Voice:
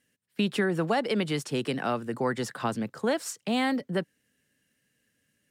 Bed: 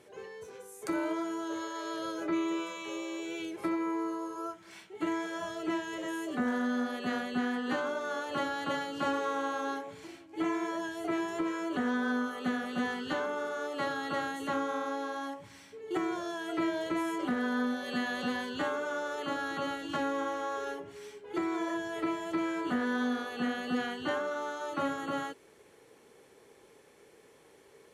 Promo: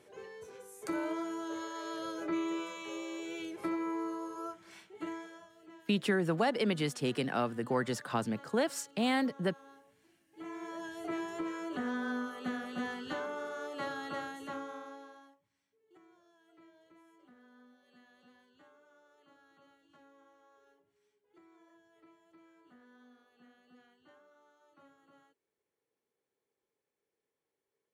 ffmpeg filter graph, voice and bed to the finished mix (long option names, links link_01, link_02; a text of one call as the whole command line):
ffmpeg -i stem1.wav -i stem2.wav -filter_complex "[0:a]adelay=5500,volume=-3.5dB[link_01];[1:a]volume=14dB,afade=type=out:start_time=4.69:duration=0.8:silence=0.112202,afade=type=in:start_time=10.27:duration=0.68:silence=0.141254,afade=type=out:start_time=14.01:duration=1.39:silence=0.0562341[link_02];[link_01][link_02]amix=inputs=2:normalize=0" out.wav